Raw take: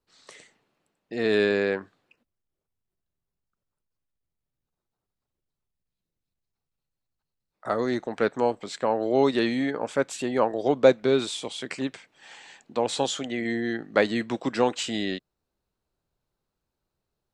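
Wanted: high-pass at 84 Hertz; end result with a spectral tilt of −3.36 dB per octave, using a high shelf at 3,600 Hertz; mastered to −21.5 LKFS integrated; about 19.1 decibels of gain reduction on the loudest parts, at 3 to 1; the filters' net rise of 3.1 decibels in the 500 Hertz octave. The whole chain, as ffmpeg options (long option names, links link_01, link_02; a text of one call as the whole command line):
ffmpeg -i in.wav -af "highpass=84,equalizer=frequency=500:width_type=o:gain=3.5,highshelf=frequency=3600:gain=6,acompressor=threshold=-35dB:ratio=3,volume=14.5dB" out.wav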